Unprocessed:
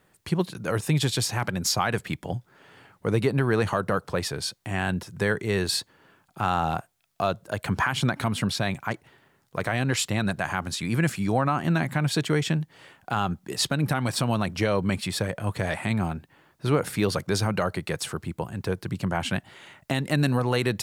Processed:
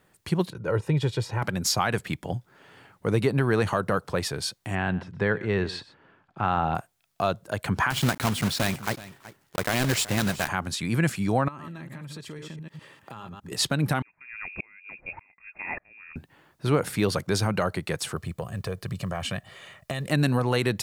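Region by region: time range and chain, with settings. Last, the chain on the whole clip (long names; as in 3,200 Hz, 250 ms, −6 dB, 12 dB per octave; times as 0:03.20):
0:00.50–0:01.42: low-pass filter 1,100 Hz 6 dB per octave + comb filter 2.1 ms, depth 53%
0:04.75–0:06.75: low-pass filter 2,700 Hz + single-tap delay 123 ms −18 dB
0:07.90–0:10.49: one scale factor per block 3 bits + single-tap delay 376 ms −17 dB
0:11.48–0:13.52: delay that plays each chunk backwards 101 ms, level −6 dB + notch comb filter 740 Hz + downward compressor 5 to 1, threshold −38 dBFS
0:14.02–0:16.16: voice inversion scrambler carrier 2,600 Hz + tremolo with a ramp in dB swelling 1.7 Hz, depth 37 dB
0:18.16–0:20.10: comb filter 1.7 ms, depth 59% + downward compressor 3 to 1, threshold −27 dBFS + log-companded quantiser 8 bits
whole clip: no processing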